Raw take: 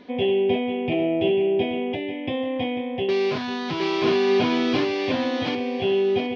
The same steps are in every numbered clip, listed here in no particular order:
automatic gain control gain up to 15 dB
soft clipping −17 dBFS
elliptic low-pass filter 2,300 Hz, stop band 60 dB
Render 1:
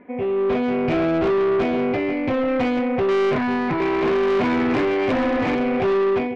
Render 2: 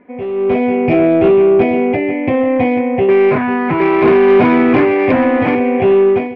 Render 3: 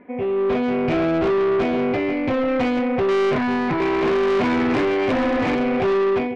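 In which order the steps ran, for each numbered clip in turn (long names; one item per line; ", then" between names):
automatic gain control, then elliptic low-pass filter, then soft clipping
elliptic low-pass filter, then soft clipping, then automatic gain control
elliptic low-pass filter, then automatic gain control, then soft clipping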